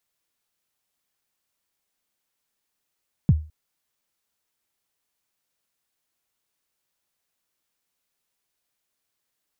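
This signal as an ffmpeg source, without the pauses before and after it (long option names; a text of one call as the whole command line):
ffmpeg -f lavfi -i "aevalsrc='0.355*pow(10,-3*t/0.33)*sin(2*PI*(190*0.038/log(77/190)*(exp(log(77/190)*min(t,0.038)/0.038)-1)+77*max(t-0.038,0)))':duration=0.21:sample_rate=44100" out.wav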